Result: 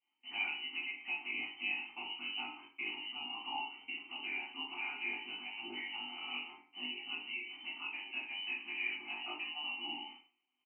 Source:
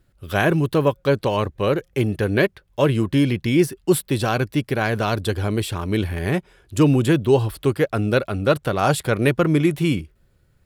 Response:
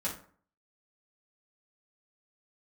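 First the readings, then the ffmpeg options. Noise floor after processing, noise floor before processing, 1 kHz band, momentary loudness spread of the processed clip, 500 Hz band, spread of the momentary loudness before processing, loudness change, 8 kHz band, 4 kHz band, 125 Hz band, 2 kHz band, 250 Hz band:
-82 dBFS, -61 dBFS, -20.5 dB, 6 LU, -39.5 dB, 6 LU, -19.0 dB, under -40 dB, -6.5 dB, under -40 dB, -11.0 dB, -33.5 dB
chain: -filter_complex "[0:a]aeval=exprs='val(0)+0.5*0.0251*sgn(val(0))':c=same,agate=range=-32dB:threshold=-32dB:ratio=16:detection=peak,equalizer=f=210:w=0.32:g=-4.5,lowpass=f=2.6k:t=q:w=0.5098,lowpass=f=2.6k:t=q:w=0.6013,lowpass=f=2.6k:t=q:w=0.9,lowpass=f=2.6k:t=q:w=2.563,afreqshift=-3100,acompressor=threshold=-28dB:ratio=6,asplit=3[a][b][c];[a]bandpass=f=300:t=q:w=8,volume=0dB[d];[b]bandpass=f=870:t=q:w=8,volume=-6dB[e];[c]bandpass=f=2.24k:t=q:w=8,volume=-9dB[f];[d][e][f]amix=inputs=3:normalize=0,flanger=delay=18.5:depth=2:speed=0.25,aecho=1:1:20|45|76.25|115.3|164.1:0.631|0.398|0.251|0.158|0.1[g];[1:a]atrim=start_sample=2205,asetrate=57330,aresample=44100[h];[g][h]afir=irnorm=-1:irlink=0,volume=7dB"

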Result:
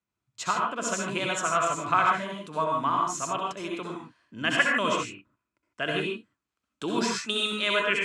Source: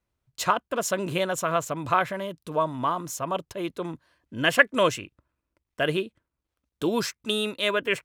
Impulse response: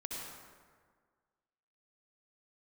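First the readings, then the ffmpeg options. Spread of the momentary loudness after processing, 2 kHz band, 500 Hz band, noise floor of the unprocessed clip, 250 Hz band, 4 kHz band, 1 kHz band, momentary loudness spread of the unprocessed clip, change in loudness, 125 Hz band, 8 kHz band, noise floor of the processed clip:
12 LU, -0.5 dB, -4.5 dB, -85 dBFS, -2.0 dB, +0.5 dB, +1.5 dB, 14 LU, -1.0 dB, -4.0 dB, +1.0 dB, under -85 dBFS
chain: -filter_complex "[0:a]acrossover=split=570[a][b];[b]dynaudnorm=f=570:g=3:m=5dB[c];[a][c]amix=inputs=2:normalize=0,highpass=110,equalizer=f=200:t=q:w=4:g=4,equalizer=f=540:t=q:w=4:g=-6,equalizer=f=1.3k:t=q:w=4:g=4,equalizer=f=2.5k:t=q:w=4:g=3,equalizer=f=7.3k:t=q:w=4:g=4,lowpass=f=8.8k:w=0.5412,lowpass=f=8.8k:w=1.3066[d];[1:a]atrim=start_sample=2205,afade=t=out:st=0.21:d=0.01,atrim=end_sample=9702[e];[d][e]afir=irnorm=-1:irlink=0,volume=-2.5dB"

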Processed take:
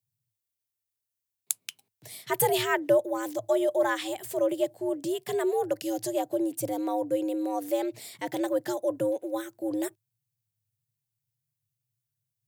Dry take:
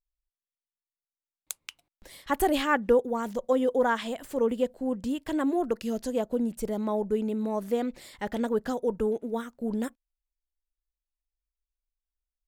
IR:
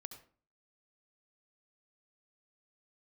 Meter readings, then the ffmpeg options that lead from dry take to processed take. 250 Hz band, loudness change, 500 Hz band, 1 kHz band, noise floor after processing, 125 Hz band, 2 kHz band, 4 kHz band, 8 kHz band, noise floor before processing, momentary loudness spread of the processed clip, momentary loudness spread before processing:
-2.0 dB, -0.5 dB, +0.5 dB, -1.0 dB, under -85 dBFS, -1.0 dB, -0.5 dB, +2.5 dB, +7.5 dB, under -85 dBFS, 9 LU, 10 LU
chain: -af "equalizer=f=1.1k:w=2.1:g=-6.5,crystalizer=i=1.5:c=0,afreqshift=98"

